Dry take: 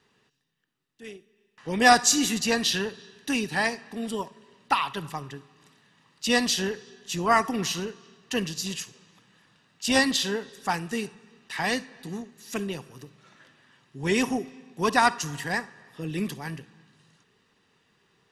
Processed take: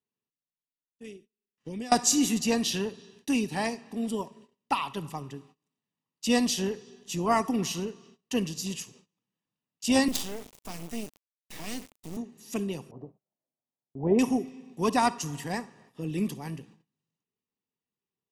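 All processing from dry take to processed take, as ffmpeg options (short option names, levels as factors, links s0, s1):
-filter_complex "[0:a]asettb=1/sr,asplit=3[s0][s1][s2];[s0]atrim=end=1.064[s3];[s1]atrim=start=1.06:end=1.92,asetpts=PTS-STARTPTS,afade=t=in:d=0.004:c=qsin,afade=t=out:st=0.856:d=0.004:c=qsin,lowpass=12000,equalizer=f=890:t=o:w=1.1:g=-9.5,acompressor=threshold=0.0251:ratio=12:attack=3.2:release=140:knee=1:detection=peak[s4];[s2]atrim=start=1.916[s5];[s3][s4]acrossfade=d=0.004:c1=hsin:c2=qsin[s6];[s6][s5]acrossfade=d=0.004:c1=qsin:c2=hsin,asettb=1/sr,asplit=3[s7][s8][s9];[s7]atrim=end=10.084[s10];[s8]atrim=start=10.08:end=12.17,asetpts=PTS-STARTPTS,afade=t=in:d=0.004:c=qsin,afade=t=out:st=2.086:d=0.004:c=qsin,acrossover=split=280|3000[s11][s12][s13];[s12]acompressor=threshold=0.0251:ratio=2.5:attack=3.2:release=140:knee=2.83:detection=peak[s14];[s11][s14][s13]amix=inputs=3:normalize=0,bandreject=f=840:w=5.1,acrusher=bits=4:dc=4:mix=0:aa=0.000001[s15];[s9]atrim=start=12.166[s16];[s10][s15]acrossfade=d=0.004:c1=hsin:c2=qsin[s17];[s17][s16]acrossfade=d=0.004:c1=qsin:c2=hsin,asettb=1/sr,asplit=3[s18][s19][s20];[s18]atrim=end=12.914[s21];[s19]atrim=start=12.91:end=14.19,asetpts=PTS-STARTPTS,afade=t=in:d=0.004:c=qsin,afade=t=out:st=1.276:d=0.004:c=qsin,lowpass=f=700:t=q:w=3.4,agate=range=0.282:threshold=0.00282:ratio=16:release=100:detection=peak[s22];[s20]atrim=start=14.186[s23];[s21][s22]acrossfade=d=0.004:c1=hsin:c2=qsin[s24];[s24][s23]acrossfade=d=0.004:c1=qsin:c2=hsin,agate=range=0.0501:threshold=0.00251:ratio=16:detection=peak,equalizer=f=250:t=o:w=0.67:g=4,equalizer=f=1600:t=o:w=0.67:g=-11,equalizer=f=4000:t=o:w=0.67:g=-5,volume=0.841"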